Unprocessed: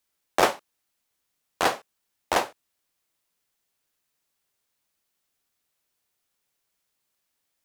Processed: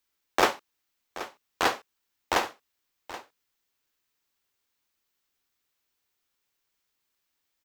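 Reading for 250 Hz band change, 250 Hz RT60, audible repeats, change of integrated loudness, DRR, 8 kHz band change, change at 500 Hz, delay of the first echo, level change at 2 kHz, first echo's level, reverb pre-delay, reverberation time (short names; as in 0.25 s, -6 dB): -1.0 dB, none, 1, -3.0 dB, none, -2.5 dB, -3.0 dB, 0.778 s, 0.0 dB, -15.0 dB, none, none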